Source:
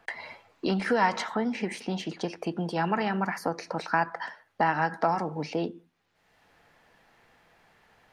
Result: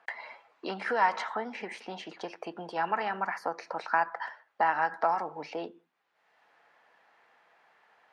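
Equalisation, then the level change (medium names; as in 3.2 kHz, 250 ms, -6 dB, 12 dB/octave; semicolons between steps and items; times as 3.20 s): band-pass filter 920 Hz, Q 0.76; tilt EQ +2 dB/octave; 0.0 dB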